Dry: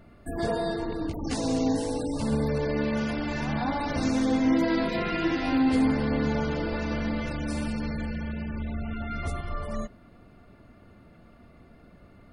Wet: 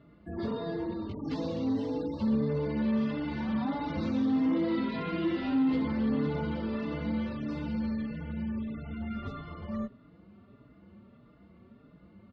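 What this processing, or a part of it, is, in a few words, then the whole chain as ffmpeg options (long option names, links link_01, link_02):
barber-pole flanger into a guitar amplifier: -filter_complex "[0:a]asplit=2[link_01][link_02];[link_02]adelay=4.5,afreqshift=1.6[link_03];[link_01][link_03]amix=inputs=2:normalize=1,asoftclip=type=tanh:threshold=-22dB,highpass=80,equalizer=frequency=200:width_type=q:width=4:gain=6,equalizer=frequency=720:width_type=q:width=4:gain=-8,equalizer=frequency=1600:width_type=q:width=4:gain=-7,equalizer=frequency=2400:width_type=q:width=4:gain=-6,lowpass=frequency=3800:width=0.5412,lowpass=frequency=3800:width=1.3066"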